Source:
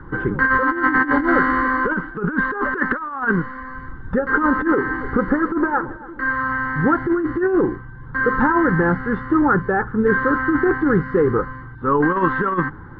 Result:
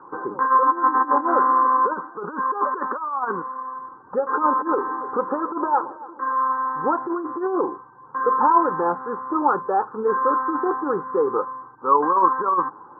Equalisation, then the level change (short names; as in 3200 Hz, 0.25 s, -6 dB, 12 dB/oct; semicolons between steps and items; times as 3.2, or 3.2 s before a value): HPF 750 Hz 12 dB/oct; elliptic low-pass 1100 Hz, stop band 70 dB; +6.5 dB